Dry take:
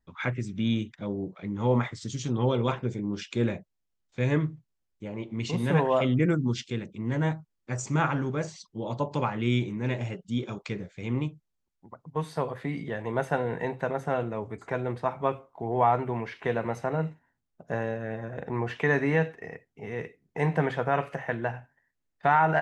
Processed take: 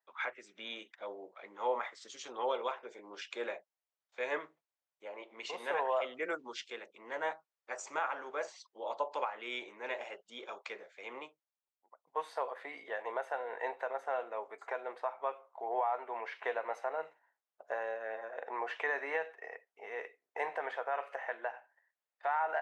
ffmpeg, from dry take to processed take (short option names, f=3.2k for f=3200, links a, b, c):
-filter_complex "[0:a]asplit=2[a][b];[a]atrim=end=12.07,asetpts=PTS-STARTPTS,afade=t=out:st=11.13:d=0.94:silence=0.141254[c];[b]atrim=start=12.07,asetpts=PTS-STARTPTS,afade=t=in:d=0.004:c=hsin:silence=0.141254[d];[c][d]concat=n=2:v=0:a=1,highpass=f=560:w=0.5412,highpass=f=560:w=1.3066,highshelf=f=3.5k:g=-11.5,alimiter=limit=-23dB:level=0:latency=1:release=337"